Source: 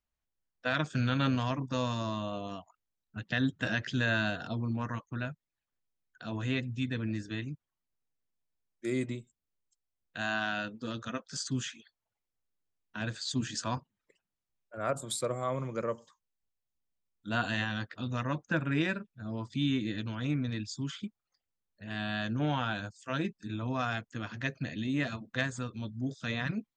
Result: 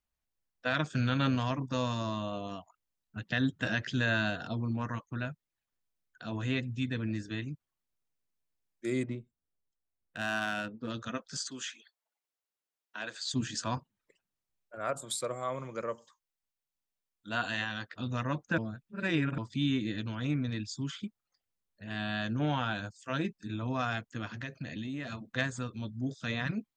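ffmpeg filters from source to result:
-filter_complex "[0:a]asettb=1/sr,asplit=3[s0][s1][s2];[s0]atrim=end=9.034[s3];[s1]atrim=start=9.03:end=10.9,asetpts=PTS-STARTPTS,afade=t=in:d=0.004:c=qsin,afade=t=out:st=1.866:d=0.004:c=qsin,adynamicsmooth=sensitivity=6.5:basefreq=1800[s4];[s2]atrim=start=10.896[s5];[s3][s4]acrossfade=d=0.004:c1=hsin:c2=qsin[s6];[s6][s5]acrossfade=d=0.004:c1=qsin:c2=hsin,asettb=1/sr,asplit=3[s7][s8][s9];[s7]atrim=end=11.494[s10];[s8]atrim=start=11.49:end=13.34,asetpts=PTS-STARTPTS,afade=t=in:d=0.004:c=qsin,afade=t=out:st=1.846:d=0.004:c=qsin,highpass=460[s11];[s9]atrim=start=13.336[s12];[s10][s11]acrossfade=d=0.004:c1=hsin:c2=qsin[s13];[s13][s12]acrossfade=d=0.004:c1=qsin:c2=hsin,asettb=1/sr,asplit=3[s14][s15][s16];[s14]atrim=end=14.754[s17];[s15]atrim=start=14.75:end=17.96,asetpts=PTS-STARTPTS,afade=t=in:d=0.004:c=qsin,afade=t=out:st=3.206:d=0.004:c=qsin,lowshelf=f=360:g=-8[s18];[s16]atrim=start=17.956[s19];[s17][s18]acrossfade=d=0.004:c1=hsin:c2=qsin[s20];[s20][s19]acrossfade=d=0.004:c1=qsin:c2=hsin,asettb=1/sr,asplit=3[s21][s22][s23];[s21]atrim=end=24.254[s24];[s22]atrim=start=24.25:end=25.2,asetpts=PTS-STARTPTS,afade=t=in:d=0.004:c=qsin,afade=t=out:st=0.946:d=0.004:c=qsin,acompressor=threshold=0.02:ratio=6:attack=3.2:release=140:knee=1:detection=peak[s25];[s23]atrim=start=25.196[s26];[s24][s25]acrossfade=d=0.004:c1=hsin:c2=qsin[s27];[s27][s26]acrossfade=d=0.004:c1=qsin:c2=hsin,asplit=3[s28][s29][s30];[s28]atrim=end=18.582[s31];[s29]atrim=start=18.578:end=19.382,asetpts=PTS-STARTPTS,areverse[s32];[s30]atrim=start=19.378[s33];[s31][s32]acrossfade=d=0.004:c1=hsin:c2=hsin[s34];[s34][s33]acrossfade=d=0.004:c1=hsin:c2=hsin"

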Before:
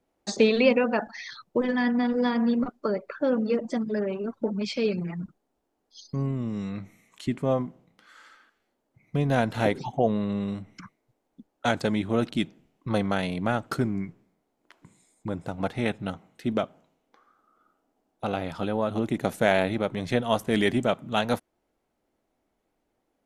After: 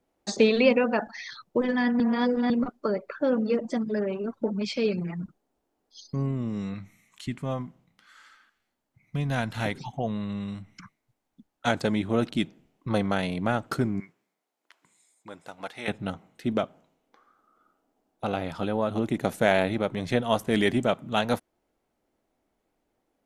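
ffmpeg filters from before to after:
-filter_complex "[0:a]asettb=1/sr,asplit=3[s0][s1][s2];[s0]atrim=end=6.744[s3];[s1]atrim=start=6.74:end=11.67,asetpts=PTS-STARTPTS,afade=t=in:d=0.004:c=qsin,afade=t=out:st=4.926:d=0.004:c=qsin,equalizer=f=440:t=o:w=1.8:g=-10[s4];[s2]atrim=start=11.666[s5];[s3][s4]acrossfade=d=0.004:c1=hsin:c2=qsin[s6];[s6][s5]acrossfade=d=0.004:c1=qsin:c2=hsin,asettb=1/sr,asplit=3[s7][s8][s9];[s7]atrim=end=14.004[s10];[s8]atrim=start=14:end=15.88,asetpts=PTS-STARTPTS,afade=t=in:d=0.004:c=qsin,afade=t=out:st=1.876:d=0.004:c=qsin,highpass=f=1400:p=1[s11];[s9]atrim=start=15.876[s12];[s10][s11]acrossfade=d=0.004:c1=hsin:c2=qsin[s13];[s13][s12]acrossfade=d=0.004:c1=qsin:c2=hsin,asplit=3[s14][s15][s16];[s14]atrim=end=2.002[s17];[s15]atrim=start=1.998:end=2.502,asetpts=PTS-STARTPTS,areverse[s18];[s16]atrim=start=2.498[s19];[s17][s18]acrossfade=d=0.004:c1=hsin:c2=hsin[s20];[s20][s19]acrossfade=d=0.004:c1=hsin:c2=hsin"

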